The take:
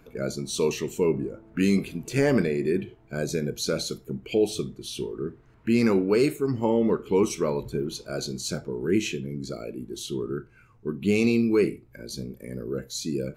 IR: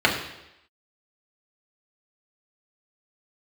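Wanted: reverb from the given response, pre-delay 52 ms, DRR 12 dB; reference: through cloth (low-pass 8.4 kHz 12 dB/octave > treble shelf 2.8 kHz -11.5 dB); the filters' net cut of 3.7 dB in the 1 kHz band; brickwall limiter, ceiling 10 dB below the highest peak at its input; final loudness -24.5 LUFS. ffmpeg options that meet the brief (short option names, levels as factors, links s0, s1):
-filter_complex "[0:a]equalizer=f=1000:t=o:g=-3,alimiter=limit=0.0891:level=0:latency=1,asplit=2[s0][s1];[1:a]atrim=start_sample=2205,adelay=52[s2];[s1][s2]afir=irnorm=-1:irlink=0,volume=0.0266[s3];[s0][s3]amix=inputs=2:normalize=0,lowpass=8400,highshelf=f=2800:g=-11.5,volume=2.51"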